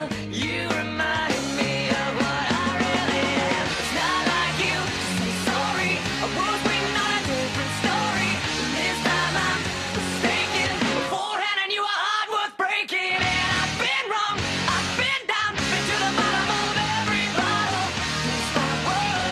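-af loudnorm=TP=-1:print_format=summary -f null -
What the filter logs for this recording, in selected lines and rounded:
Input Integrated:    -23.0 LUFS
Input True Peak:      -7.4 dBTP
Input LRA:             0.9 LU
Input Threshold:     -33.0 LUFS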